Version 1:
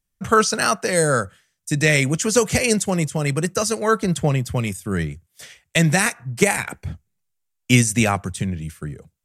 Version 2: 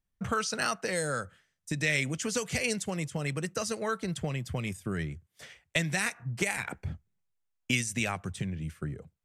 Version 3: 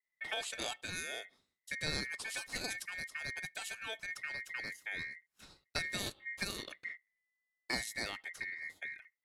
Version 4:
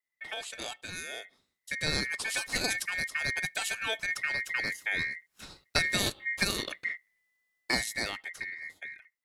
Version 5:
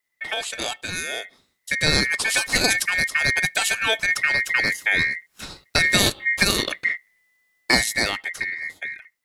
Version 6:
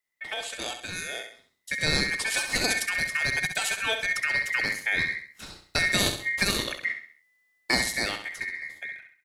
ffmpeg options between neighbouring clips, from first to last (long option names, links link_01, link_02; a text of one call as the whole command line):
ffmpeg -i in.wav -filter_complex "[0:a]highshelf=frequency=4300:gain=-12,acrossover=split=2000[link_01][link_02];[link_01]acompressor=threshold=-27dB:ratio=6[link_03];[link_03][link_02]amix=inputs=2:normalize=0,volume=-3.5dB" out.wav
ffmpeg -i in.wav -af "adynamicequalizer=threshold=0.00447:dfrequency=620:dqfactor=0.86:tfrequency=620:tqfactor=0.86:attack=5:release=100:ratio=0.375:range=3:mode=cutabove:tftype=bell,aeval=exprs='val(0)*sin(2*PI*2000*n/s)':channel_layout=same,volume=-5.5dB" out.wav
ffmpeg -i in.wav -af "dynaudnorm=framelen=340:gausssize=11:maxgain=10dB" out.wav
ffmpeg -i in.wav -af "alimiter=level_in=12dB:limit=-1dB:release=50:level=0:latency=1,volume=-1dB" out.wav
ffmpeg -i in.wav -af "aecho=1:1:66|132|198|264:0.398|0.155|0.0606|0.0236,volume=-6.5dB" out.wav